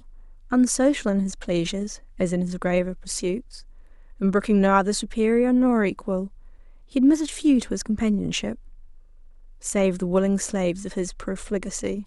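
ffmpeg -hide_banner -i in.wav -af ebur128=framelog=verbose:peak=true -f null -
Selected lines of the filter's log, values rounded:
Integrated loudness:
  I:         -23.4 LUFS
  Threshold: -34.2 LUFS
Loudness range:
  LRA:         4.6 LU
  Threshold: -44.0 LUFS
  LRA low:   -26.6 LUFS
  LRA high:  -22.0 LUFS
True peak:
  Peak:       -6.7 dBFS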